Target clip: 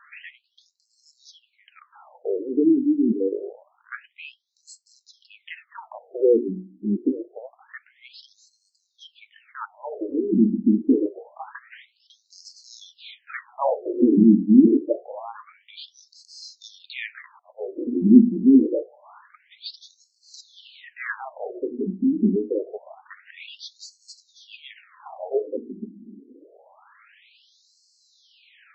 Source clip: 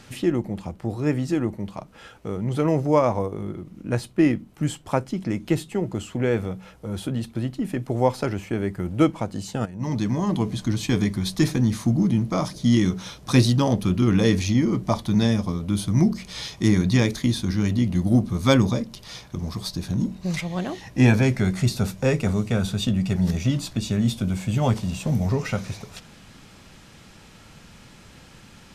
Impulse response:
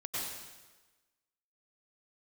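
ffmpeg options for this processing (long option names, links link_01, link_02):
-filter_complex "[0:a]asettb=1/sr,asplit=3[link_01][link_02][link_03];[link_01]atrim=end=17.394[link_04];[link_02]atrim=start=17.39:end=17.91,asetpts=PTS-STARTPTS,afade=type=in:duration=0.004:curve=qsin,afade=type=out:start_time=0.516:duration=0.004:curve=qsin,agate=range=-26dB:threshold=-21dB:ratio=16:detection=peak[link_05];[link_03]atrim=start=17.906[link_06];[link_04][link_05]acrossfade=duration=0.004:curve1=hsin:curve2=qsin[link_07];[link_07][link_06]acrossfade=duration=0.004:curve1=qsin:curve2=hsin,aemphasis=mode=reproduction:type=riaa,bandreject=frequency=60:width_type=h:width=6,bandreject=frequency=120:width_type=h:width=6,bandreject=frequency=180:width_type=h:width=6,bandreject=frequency=240:width_type=h:width=6,bandreject=frequency=300:width_type=h:width=6,bandreject=frequency=360:width_type=h:width=6,acontrast=31,afftfilt=real='re*between(b*sr/1024,270*pow(5900/270,0.5+0.5*sin(2*PI*0.26*pts/sr))/1.41,270*pow(5900/270,0.5+0.5*sin(2*PI*0.26*pts/sr))*1.41)':imag='im*between(b*sr/1024,270*pow(5900/270,0.5+0.5*sin(2*PI*0.26*pts/sr))/1.41,270*pow(5900/270,0.5+0.5*sin(2*PI*0.26*pts/sr))*1.41)':win_size=1024:overlap=0.75"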